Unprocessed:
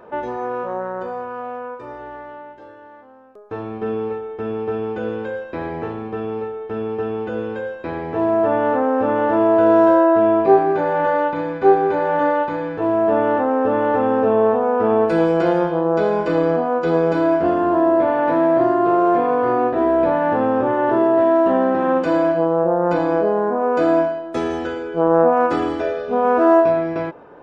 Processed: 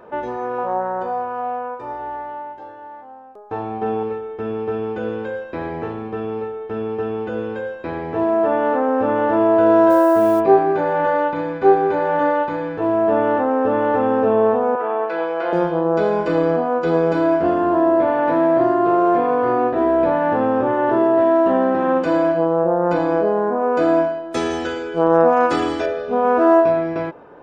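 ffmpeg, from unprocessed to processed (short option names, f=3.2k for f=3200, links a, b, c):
-filter_complex "[0:a]asettb=1/sr,asplit=3[a][b][c];[a]atrim=end=0.584[d];[b]atrim=start=0.58:end=4.03,asetpts=PTS-STARTPTS,afade=t=in:d=0.004:c=qsin,afade=t=out:st=3.446:d=0.004:c=qsin,equalizer=f=810:w=4.4:g=13.5[e];[c]atrim=start=4.026[f];[d][e]acrossfade=d=0.004:c1=hsin:c2=qsin[g];[g][f]acrossfade=d=0.004:c1=qsin:c2=hsin,asettb=1/sr,asplit=3[h][i][j];[h]atrim=end=8.234[k];[i]atrim=start=8.23:end=8.89,asetpts=PTS-STARTPTS,afade=t=in:d=0.004:c=qsin,afade=t=out:st=0.656:d=0.004:c=qsin,equalizer=f=110:t=o:w=0.77:g=-10[l];[j]atrim=start=8.886[m];[k][l]acrossfade=d=0.004:c1=hsin:c2=qsin[n];[n][m]acrossfade=d=0.004:c1=qsin:c2=hsin,asplit=3[o][p][q];[o]afade=t=out:st=9.89:d=0.02[r];[p]acrusher=bits=5:mix=0:aa=0.5,afade=t=in:st=9.89:d=0.02,afade=t=out:st=10.39:d=0.02[s];[q]afade=t=in:st=10.39:d=0.02[t];[r][s][t]amix=inputs=3:normalize=0,asettb=1/sr,asplit=3[u][v][w];[u]atrim=end=14.754[x];[v]atrim=start=14.75:end=15.53,asetpts=PTS-STARTPTS,afade=t=in:d=0.004:c=qsin,afade=t=out:st=0.776:d=0.004:c=qsin,highpass=640,lowpass=2.9k[y];[w]atrim=start=15.526[z];[x][y]acrossfade=d=0.004:c1=hsin:c2=qsin[aa];[aa][z]acrossfade=d=0.004:c1=qsin:c2=hsin,asettb=1/sr,asplit=3[ab][ac][ad];[ab]atrim=end=24.314[ae];[ac]atrim=start=24.31:end=25.86,asetpts=PTS-STARTPTS,afade=t=in:d=0.004:c=qsin,afade=t=out:st=1.546:d=0.004:c=qsin,highshelf=f=2.7k:g=11[af];[ad]atrim=start=25.856[ag];[ae][af]acrossfade=d=0.004:c1=hsin:c2=qsin[ah];[ah][ag]acrossfade=d=0.004:c1=qsin:c2=hsin"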